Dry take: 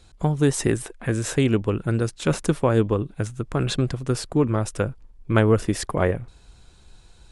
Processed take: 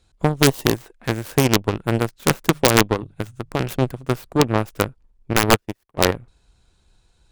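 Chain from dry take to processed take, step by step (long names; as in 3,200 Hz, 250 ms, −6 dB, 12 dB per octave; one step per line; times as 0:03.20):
stylus tracing distortion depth 0.47 ms
0:00.47–0:00.75: gain on a spectral selection 1,200–2,600 Hz −7 dB
0:02.41–0:04.40: mains-hum notches 50/100/150 Hz
harmonic generator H 4 −22 dB, 7 −19 dB, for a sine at −4.5 dBFS
wrap-around overflow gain 6 dB
0:05.33–0:05.98: expander for the loud parts 2.5 to 1, over −35 dBFS
level +5 dB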